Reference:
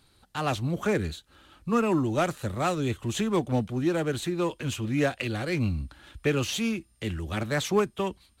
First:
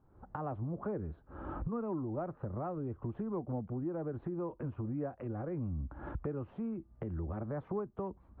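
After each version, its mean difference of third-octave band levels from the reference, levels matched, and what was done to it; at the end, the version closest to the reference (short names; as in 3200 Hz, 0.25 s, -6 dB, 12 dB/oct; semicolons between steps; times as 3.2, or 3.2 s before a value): 11.5 dB: recorder AGC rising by 56 dB/s; LPF 1100 Hz 24 dB/oct; compressor 2.5:1, threshold -32 dBFS, peak gain reduction 9 dB; gain -5 dB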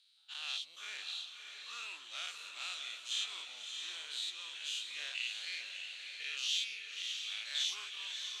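16.5 dB: spectral dilation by 0.12 s; ladder band-pass 4000 Hz, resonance 45%; diffused feedback echo 0.617 s, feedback 47%, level -5.5 dB; gain +1 dB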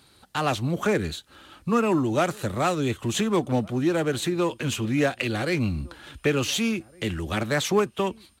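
2.0 dB: HPF 130 Hz 6 dB/oct; in parallel at +2 dB: compressor, threshold -32 dBFS, peak gain reduction 12.5 dB; on the sum: outdoor echo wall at 250 m, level -25 dB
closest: third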